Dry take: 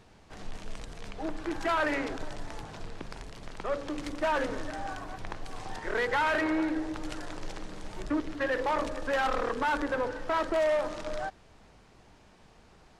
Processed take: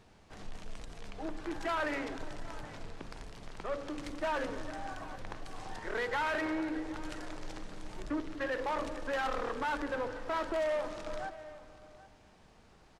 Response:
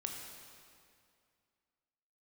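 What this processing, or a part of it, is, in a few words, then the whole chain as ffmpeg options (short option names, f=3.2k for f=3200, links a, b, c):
saturated reverb return: -filter_complex "[0:a]asplit=2[a][b];[1:a]atrim=start_sample=2205[c];[b][c]afir=irnorm=-1:irlink=0,asoftclip=type=tanh:threshold=-34.5dB,volume=-4dB[d];[a][d]amix=inputs=2:normalize=0,aecho=1:1:773:0.119,volume=-7dB"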